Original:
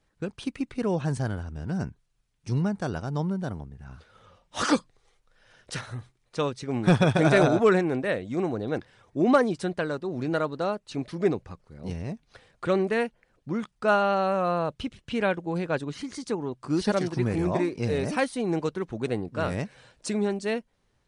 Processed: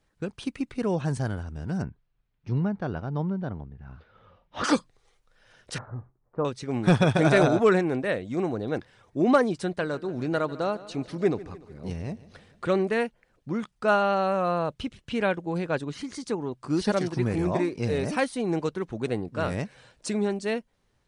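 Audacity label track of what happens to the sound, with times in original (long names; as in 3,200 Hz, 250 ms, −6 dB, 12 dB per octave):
1.820000	4.640000	high-frequency loss of the air 280 metres
5.780000	6.450000	low-pass filter 1,200 Hz 24 dB per octave
9.620000	12.710000	repeating echo 148 ms, feedback 58%, level −18.5 dB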